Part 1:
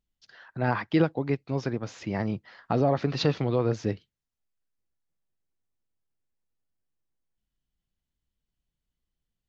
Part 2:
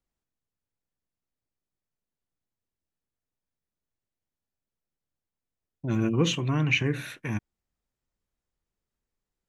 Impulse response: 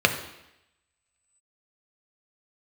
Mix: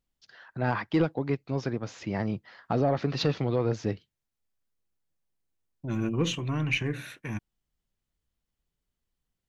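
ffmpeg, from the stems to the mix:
-filter_complex "[0:a]asoftclip=type=tanh:threshold=-14dB,volume=-0.5dB[link_01];[1:a]aeval=exprs='0.266*(cos(1*acos(clip(val(0)/0.266,-1,1)))-cos(1*PI/2))+0.00668*(cos(6*acos(clip(val(0)/0.266,-1,1)))-cos(6*PI/2))':channel_layout=same,volume=-3.5dB[link_02];[link_01][link_02]amix=inputs=2:normalize=0"

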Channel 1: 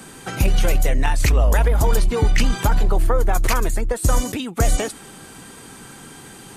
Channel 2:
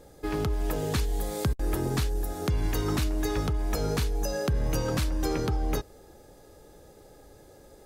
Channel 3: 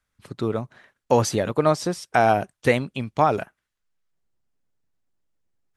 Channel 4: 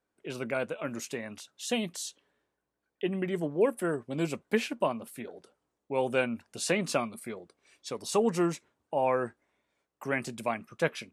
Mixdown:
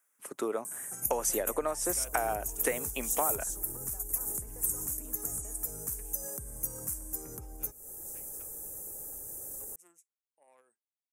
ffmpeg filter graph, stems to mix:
ffmpeg -i stem1.wav -i stem2.wav -i stem3.wav -i stem4.wav -filter_complex "[0:a]acompressor=threshold=-20dB:ratio=2.5,highpass=42,adelay=650,volume=-19dB[link_01];[1:a]acompressor=mode=upward:threshold=-44dB:ratio=2.5,alimiter=level_in=2dB:limit=-24dB:level=0:latency=1:release=215,volume=-2dB,adelay=1900,volume=-5dB[link_02];[2:a]acrossover=split=210 3100:gain=0.224 1 0.2[link_03][link_04][link_05];[link_03][link_04][link_05]amix=inputs=3:normalize=0,volume=0dB,asplit=2[link_06][link_07];[3:a]aeval=exprs='0.282*(cos(1*acos(clip(val(0)/0.282,-1,1)))-cos(1*PI/2))+0.0891*(cos(3*acos(clip(val(0)/0.282,-1,1)))-cos(3*PI/2))+0.00891*(cos(5*acos(clip(val(0)/0.282,-1,1)))-cos(5*PI/2))':channel_layout=same,adelay=1450,volume=-4dB[link_08];[link_07]apad=whole_len=554423[link_09];[link_08][link_09]sidechaingate=range=-22dB:threshold=-46dB:ratio=16:detection=peak[link_10];[link_01][link_02]amix=inputs=2:normalize=0,equalizer=frequency=3400:width_type=o:width=1:gain=-14.5,acompressor=threshold=-49dB:ratio=2,volume=0dB[link_11];[link_06][link_10]amix=inputs=2:normalize=0,highpass=350,acompressor=threshold=-28dB:ratio=10,volume=0dB[link_12];[link_11][link_12]amix=inputs=2:normalize=0,aexciter=amount=11.1:drive=9.3:freq=6500" out.wav

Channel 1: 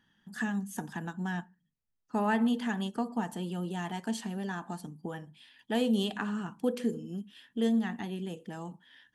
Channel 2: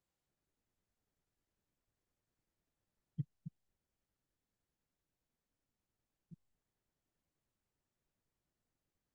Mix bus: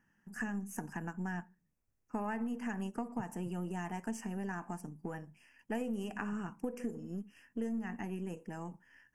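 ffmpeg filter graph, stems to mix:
ffmpeg -i stem1.wav -i stem2.wav -filter_complex "[0:a]aeval=exprs='if(lt(val(0),0),0.708*val(0),val(0))':channel_layout=same,volume=-1.5dB,asplit=2[link_01][link_02];[1:a]lowshelf=frequency=240:gain=10,volume=-3.5dB[link_03];[link_02]apad=whole_len=403448[link_04];[link_03][link_04]sidechaincompress=threshold=-35dB:ratio=8:attack=16:release=390[link_05];[link_01][link_05]amix=inputs=2:normalize=0,asuperstop=centerf=3800:order=8:qfactor=1.7,acompressor=threshold=-33dB:ratio=10" out.wav

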